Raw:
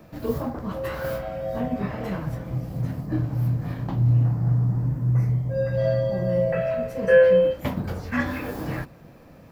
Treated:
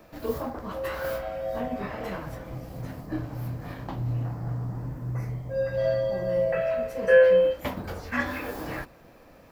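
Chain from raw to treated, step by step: peaking EQ 140 Hz -11 dB 1.8 oct

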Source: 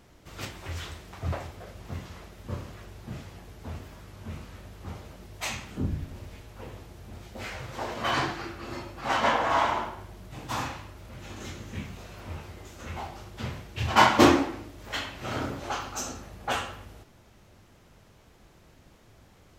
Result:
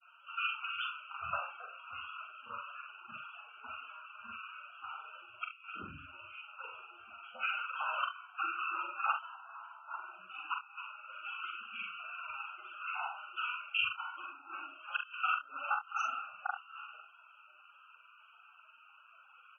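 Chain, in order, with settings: two resonant band-passes 1.9 kHz, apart 0.93 oct; inverted gate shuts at -31 dBFS, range -27 dB; loudest bins only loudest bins 32; granulator, spray 25 ms, pitch spread up and down by 0 st; on a send: early reflections 43 ms -5.5 dB, 69 ms -13 dB; on the sum: trim +13 dB

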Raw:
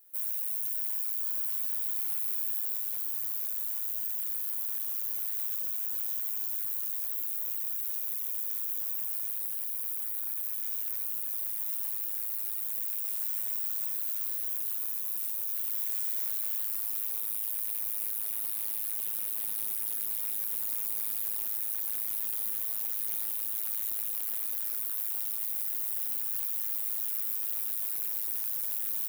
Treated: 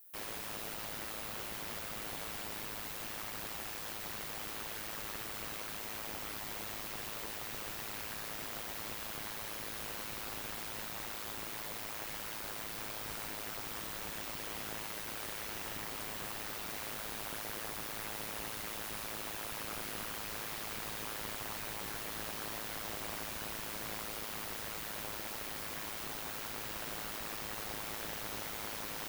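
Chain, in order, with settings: slew-rate limiter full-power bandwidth 70 Hz; trim +1 dB

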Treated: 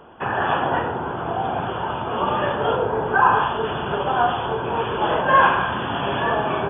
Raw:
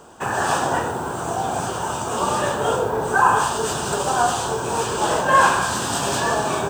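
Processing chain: brick-wall FIR low-pass 3.5 kHz

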